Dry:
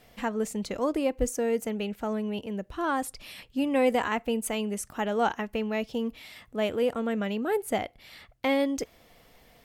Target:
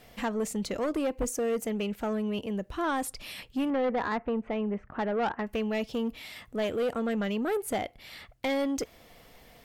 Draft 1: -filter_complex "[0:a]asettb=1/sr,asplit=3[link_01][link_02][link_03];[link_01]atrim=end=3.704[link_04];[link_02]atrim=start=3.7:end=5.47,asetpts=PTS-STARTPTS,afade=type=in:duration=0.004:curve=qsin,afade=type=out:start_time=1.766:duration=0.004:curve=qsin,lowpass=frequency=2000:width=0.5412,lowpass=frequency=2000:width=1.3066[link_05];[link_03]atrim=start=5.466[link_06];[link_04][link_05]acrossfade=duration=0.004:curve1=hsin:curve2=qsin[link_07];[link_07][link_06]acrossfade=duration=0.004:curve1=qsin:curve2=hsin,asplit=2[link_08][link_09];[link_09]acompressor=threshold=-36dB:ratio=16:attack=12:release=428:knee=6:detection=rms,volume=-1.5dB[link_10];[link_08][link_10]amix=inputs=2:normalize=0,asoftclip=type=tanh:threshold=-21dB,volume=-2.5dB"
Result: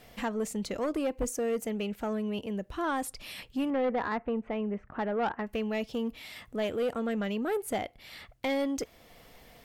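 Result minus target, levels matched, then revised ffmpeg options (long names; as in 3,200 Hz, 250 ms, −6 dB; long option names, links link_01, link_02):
downward compressor: peak gain reduction +10.5 dB
-filter_complex "[0:a]asettb=1/sr,asplit=3[link_01][link_02][link_03];[link_01]atrim=end=3.704[link_04];[link_02]atrim=start=3.7:end=5.47,asetpts=PTS-STARTPTS,afade=type=in:duration=0.004:curve=qsin,afade=type=out:start_time=1.766:duration=0.004:curve=qsin,lowpass=frequency=2000:width=0.5412,lowpass=frequency=2000:width=1.3066[link_05];[link_03]atrim=start=5.466[link_06];[link_04][link_05]acrossfade=duration=0.004:curve1=hsin:curve2=qsin[link_07];[link_07][link_06]acrossfade=duration=0.004:curve1=qsin:curve2=hsin,asplit=2[link_08][link_09];[link_09]acompressor=threshold=-25dB:ratio=16:attack=12:release=428:knee=6:detection=rms,volume=-1.5dB[link_10];[link_08][link_10]amix=inputs=2:normalize=0,asoftclip=type=tanh:threshold=-21dB,volume=-2.5dB"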